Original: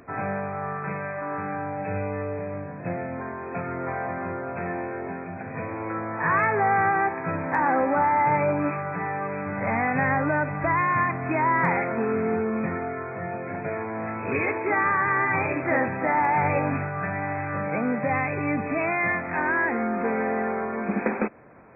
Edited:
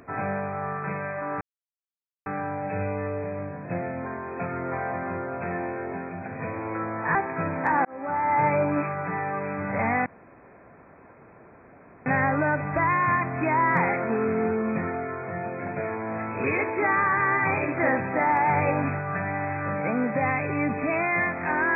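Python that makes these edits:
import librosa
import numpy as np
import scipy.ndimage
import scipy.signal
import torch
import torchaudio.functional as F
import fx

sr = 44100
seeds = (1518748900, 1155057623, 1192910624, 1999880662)

y = fx.edit(x, sr, fx.insert_silence(at_s=1.41, length_s=0.85),
    fx.cut(start_s=6.3, length_s=0.73),
    fx.fade_in_span(start_s=7.73, length_s=0.57),
    fx.insert_room_tone(at_s=9.94, length_s=2.0), tone=tone)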